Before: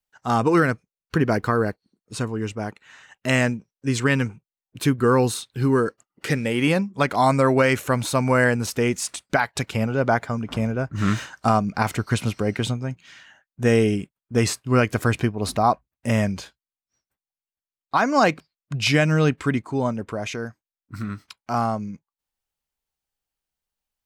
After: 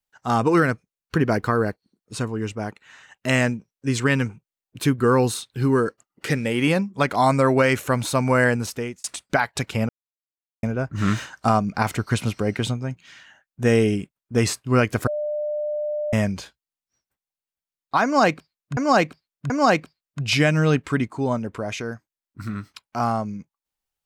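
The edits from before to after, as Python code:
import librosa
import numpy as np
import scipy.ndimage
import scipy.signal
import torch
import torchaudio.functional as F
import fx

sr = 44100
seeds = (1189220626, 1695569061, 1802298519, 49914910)

y = fx.edit(x, sr, fx.fade_out_span(start_s=8.56, length_s=0.48),
    fx.silence(start_s=9.89, length_s=0.74),
    fx.bleep(start_s=15.07, length_s=1.06, hz=598.0, db=-23.0),
    fx.repeat(start_s=18.04, length_s=0.73, count=3), tone=tone)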